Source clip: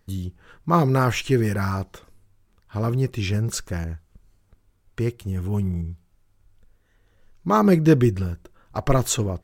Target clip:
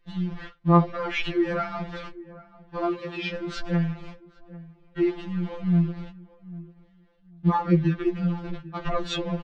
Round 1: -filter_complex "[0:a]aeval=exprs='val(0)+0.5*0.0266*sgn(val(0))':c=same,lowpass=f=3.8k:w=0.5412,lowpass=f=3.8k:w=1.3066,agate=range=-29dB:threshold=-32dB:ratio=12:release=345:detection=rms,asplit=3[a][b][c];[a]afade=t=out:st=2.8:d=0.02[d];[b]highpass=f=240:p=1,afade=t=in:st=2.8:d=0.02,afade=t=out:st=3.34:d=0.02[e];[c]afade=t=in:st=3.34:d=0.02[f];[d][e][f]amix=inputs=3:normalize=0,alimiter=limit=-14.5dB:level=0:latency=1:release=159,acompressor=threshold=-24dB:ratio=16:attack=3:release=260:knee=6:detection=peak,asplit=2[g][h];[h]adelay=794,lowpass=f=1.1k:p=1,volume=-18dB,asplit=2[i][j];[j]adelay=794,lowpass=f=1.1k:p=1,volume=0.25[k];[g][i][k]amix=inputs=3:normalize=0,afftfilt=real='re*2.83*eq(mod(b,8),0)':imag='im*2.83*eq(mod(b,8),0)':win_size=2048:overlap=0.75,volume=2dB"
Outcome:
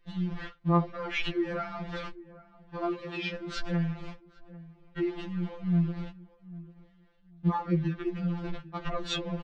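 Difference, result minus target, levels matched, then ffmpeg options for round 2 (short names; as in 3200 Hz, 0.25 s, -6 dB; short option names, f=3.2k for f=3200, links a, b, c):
compressor: peak gain reduction +8.5 dB
-filter_complex "[0:a]aeval=exprs='val(0)+0.5*0.0266*sgn(val(0))':c=same,lowpass=f=3.8k:w=0.5412,lowpass=f=3.8k:w=1.3066,agate=range=-29dB:threshold=-32dB:ratio=12:release=345:detection=rms,asplit=3[a][b][c];[a]afade=t=out:st=2.8:d=0.02[d];[b]highpass=f=240:p=1,afade=t=in:st=2.8:d=0.02,afade=t=out:st=3.34:d=0.02[e];[c]afade=t=in:st=3.34:d=0.02[f];[d][e][f]amix=inputs=3:normalize=0,alimiter=limit=-14.5dB:level=0:latency=1:release=159,asplit=2[g][h];[h]adelay=794,lowpass=f=1.1k:p=1,volume=-18dB,asplit=2[i][j];[j]adelay=794,lowpass=f=1.1k:p=1,volume=0.25[k];[g][i][k]amix=inputs=3:normalize=0,afftfilt=real='re*2.83*eq(mod(b,8),0)':imag='im*2.83*eq(mod(b,8),0)':win_size=2048:overlap=0.75,volume=2dB"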